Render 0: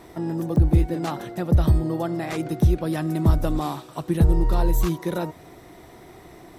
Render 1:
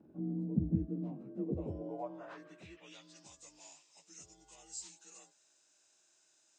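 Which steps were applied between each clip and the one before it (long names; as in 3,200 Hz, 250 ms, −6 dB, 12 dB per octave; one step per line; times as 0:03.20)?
partials spread apart or drawn together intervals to 87%
band-pass filter sweep 220 Hz → 6,600 Hz, 0:01.25–0:03.36
dynamic equaliser 1,500 Hz, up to −8 dB, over −58 dBFS, Q 1.2
level −4.5 dB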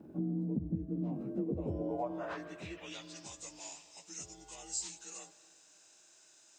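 downward compressor 12 to 1, threshold −40 dBFS, peak gain reduction 16 dB
convolution reverb RT60 2.6 s, pre-delay 98 ms, DRR 15.5 dB
level +8.5 dB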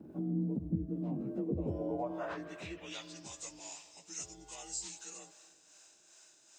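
two-band tremolo in antiphase 2.5 Hz, depth 50%, crossover 460 Hz
level +3 dB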